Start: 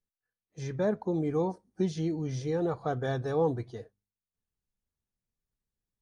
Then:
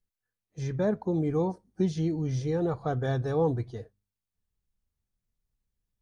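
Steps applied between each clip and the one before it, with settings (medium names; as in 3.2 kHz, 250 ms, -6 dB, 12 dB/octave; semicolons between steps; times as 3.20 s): bass shelf 130 Hz +10 dB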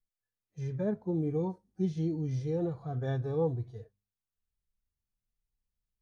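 harmonic-percussive split percussive -18 dB; trim -3 dB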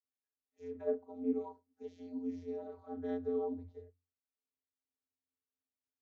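vocoder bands 32, square 87.4 Hz; trim -6 dB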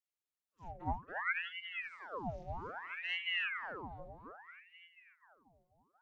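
two-band feedback delay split 330 Hz, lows 487 ms, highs 278 ms, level -6 dB; vibrato 11 Hz 23 cents; ring modulator with a swept carrier 1.4 kHz, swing 80%, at 0.62 Hz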